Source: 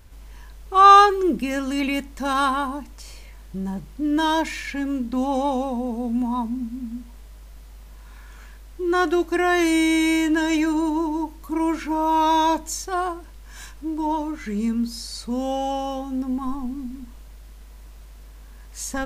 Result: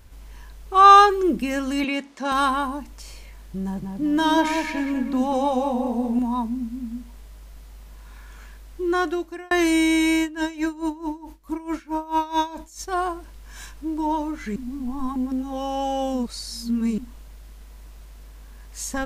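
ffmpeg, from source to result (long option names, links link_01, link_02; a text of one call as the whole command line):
ffmpeg -i in.wav -filter_complex "[0:a]asettb=1/sr,asplit=3[link_01][link_02][link_03];[link_01]atrim=end=1.844[link_04];[link_02]atrim=start=1.84:end=2.32,asetpts=PTS-STARTPTS,afade=type=in:duration=0.004:curve=qsin,afade=type=out:start_time=0.476:duration=0.004:curve=qsin,highpass=250,lowpass=6500[link_05];[link_03]atrim=start=2.316[link_06];[link_04][link_05]acrossfade=duration=0.004:curve1=hsin:curve2=qsin[link_07];[link_07][link_06]acrossfade=duration=0.004:curve1=qsin:curve2=hsin,asettb=1/sr,asplit=3[link_08][link_09][link_10];[link_08]atrim=end=3.634[link_11];[link_09]atrim=start=3.63:end=6.19,asetpts=PTS-STARTPTS,afade=type=in:duration=0.004:curve=qsin,afade=type=out:start_time=2.556:duration=0.004:curve=qsin,asplit=2[link_12][link_13];[link_13]adelay=192,lowpass=frequency=2000:poles=1,volume=-4dB,asplit=2[link_14][link_15];[link_15]adelay=192,lowpass=frequency=2000:poles=1,volume=0.39,asplit=2[link_16][link_17];[link_17]adelay=192,lowpass=frequency=2000:poles=1,volume=0.39,asplit=2[link_18][link_19];[link_19]adelay=192,lowpass=frequency=2000:poles=1,volume=0.39,asplit=2[link_20][link_21];[link_21]adelay=192,lowpass=frequency=2000:poles=1,volume=0.39[link_22];[link_12][link_14][link_16][link_18][link_20][link_22]amix=inputs=6:normalize=0,atrim=end_sample=112896[link_23];[link_10]atrim=start=6.186[link_24];[link_11][link_23]acrossfade=duration=0.004:curve1=hsin:curve2=qsin[link_25];[link_25][link_24]acrossfade=duration=0.004:curve1=qsin:curve2=hsin,asplit=3[link_26][link_27][link_28];[link_26]afade=type=out:start_time=10.19:duration=0.02[link_29];[link_27]aeval=exprs='val(0)*pow(10,-20*(0.5-0.5*cos(2*PI*4.6*n/s))/20)':channel_layout=same,afade=type=in:start_time=10.19:duration=0.02,afade=type=out:start_time=12.87:duration=0.02[link_30];[link_28]afade=type=in:start_time=12.87:duration=0.02[link_31];[link_29][link_30][link_31]amix=inputs=3:normalize=0,asplit=4[link_32][link_33][link_34][link_35];[link_32]atrim=end=9.51,asetpts=PTS-STARTPTS,afade=type=out:start_time=8.84:duration=0.67[link_36];[link_33]atrim=start=9.51:end=14.562,asetpts=PTS-STARTPTS,afade=type=in:duration=0.004:curve=hsin[link_37];[link_34]atrim=start=14.558:end=16.982,asetpts=PTS-STARTPTS,areverse[link_38];[link_35]atrim=start=16.978[link_39];[link_36][link_37]concat=n=2:v=0:a=1[link_40];[link_40][link_38]acrossfade=duration=0.004:curve1=hsin:curve2=hsin[link_41];[link_41][link_39]acrossfade=duration=0.004:curve1=hsin:curve2=hsin" out.wav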